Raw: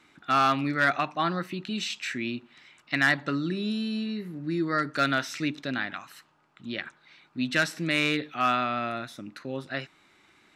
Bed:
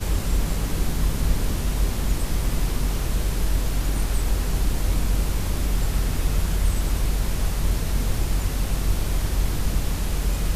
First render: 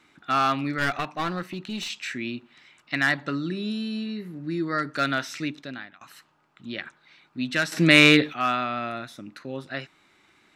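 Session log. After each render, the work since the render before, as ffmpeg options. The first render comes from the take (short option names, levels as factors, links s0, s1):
-filter_complex "[0:a]asettb=1/sr,asplit=3[s0][s1][s2];[s0]atrim=end=0.784[s3];[s1]atrim=start=0.78:end=1.9,asetpts=PTS-STARTPTS,afade=t=in:d=0.004:c=qsin,afade=t=out:st=1.116:d=0.004:c=qsin,aeval=exprs='clip(val(0),-1,0.0335)':c=same[s4];[s2]atrim=start=1.896[s5];[s3][s4]acrossfade=d=0.004:c1=hsin:c2=qsin[s6];[s6][s5]acrossfade=d=0.004:c1=qsin:c2=hsin,asplit=4[s7][s8][s9][s10];[s7]atrim=end=6.01,asetpts=PTS-STARTPTS,afade=t=out:st=5.39:d=0.62:silence=0.0794328[s11];[s8]atrim=start=6.01:end=7.722,asetpts=PTS-STARTPTS,afade=t=in:d=0.004:c=hsin:silence=0.0794328[s12];[s9]atrim=start=7.718:end=8.332,asetpts=PTS-STARTPTS,volume=3.55[s13];[s10]atrim=start=8.328[s14];[s11][s12]concat=n=2:v=0:a=1[s15];[s15][s13]acrossfade=d=0.004:c1=hsin:c2=hsin[s16];[s16][s14]acrossfade=d=0.004:c1=hsin:c2=hsin"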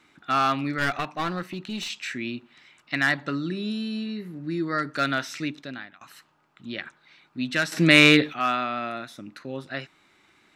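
-filter_complex "[0:a]asettb=1/sr,asplit=3[s0][s1][s2];[s0]atrim=end=8.394[s3];[s1]atrim=start=8.39:end=9.18,asetpts=PTS-STARTPTS,afade=t=in:d=0.004:c=qsin,afade=t=out:st=0.786:d=0.004:c=qsin,highpass=150[s4];[s2]atrim=start=9.176[s5];[s3][s4]acrossfade=d=0.004:c1=hsin:c2=qsin[s6];[s6][s5]acrossfade=d=0.004:c1=qsin:c2=hsin"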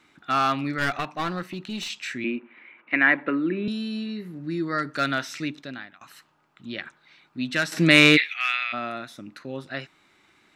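-filter_complex "[0:a]asettb=1/sr,asplit=3[s0][s1][s2];[s0]atrim=end=2.244[s3];[s1]atrim=start=2.24:end=3.68,asetpts=PTS-STARTPTS,afade=t=in:d=0.004:c=qsin,afade=t=out:st=1.436:d=0.004:c=qsin,highpass=f=190:w=0.5412,highpass=f=190:w=1.3066,equalizer=f=220:t=q:w=4:g=5,equalizer=f=330:t=q:w=4:g=7,equalizer=f=500:t=q:w=4:g=8,equalizer=f=990:t=q:w=4:g=4,equalizer=f=1600:t=q:w=4:g=3,equalizer=f=2300:t=q:w=4:g=10,lowpass=f=2600:w=0.5412,lowpass=f=2600:w=1.3066[s4];[s2]atrim=start=3.676[s5];[s3][s4]acrossfade=d=0.004:c1=hsin:c2=qsin[s6];[s6][s5]acrossfade=d=0.004:c1=qsin:c2=hsin,asplit=3[s7][s8][s9];[s7]afade=t=out:st=8.16:d=0.02[s10];[s8]highpass=f=2200:t=q:w=4.6,afade=t=in:st=8.16:d=0.02,afade=t=out:st=8.72:d=0.02[s11];[s9]afade=t=in:st=8.72:d=0.02[s12];[s10][s11][s12]amix=inputs=3:normalize=0"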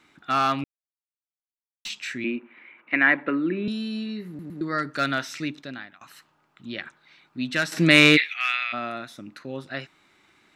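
-filter_complex "[0:a]asplit=6[s0][s1][s2][s3][s4][s5];[s0]atrim=end=0.64,asetpts=PTS-STARTPTS,afade=t=out:st=0.636:d=0.004:c=hsin[s6];[s1]atrim=start=0.64:end=1.85,asetpts=PTS-STARTPTS,volume=0[s7];[s2]atrim=start=1.85:end=4.392,asetpts=PTS-STARTPTS,afade=t=in:d=0.004:c=hsin[s8];[s3]atrim=start=4.278:end=4.392[s9];[s4]atrim=start=4.278:end=4.392[s10];[s5]atrim=start=4.608[s11];[s6][s7][s8]concat=n=3:v=0:a=1[s12];[s12][s9]acrossfade=d=0.004:c1=hsin:c2=hsin[s13];[s13][s10]acrossfade=d=0.004:c1=hsin:c2=hsin[s14];[s14][s11]acrossfade=d=0.004:c1=hsin:c2=hsin"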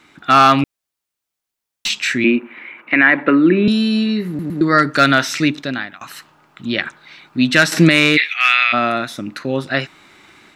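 -af "dynaudnorm=f=140:g=3:m=1.78,alimiter=level_in=2.82:limit=0.891:release=50:level=0:latency=1"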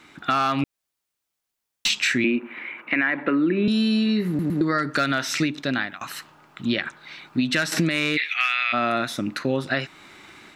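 -af "alimiter=limit=0.422:level=0:latency=1:release=298,acompressor=threshold=0.126:ratio=6"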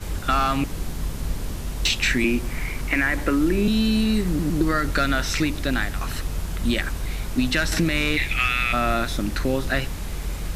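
-filter_complex "[1:a]volume=0.531[s0];[0:a][s0]amix=inputs=2:normalize=0"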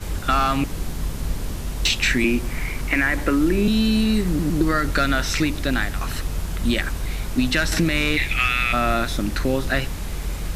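-af "volume=1.19"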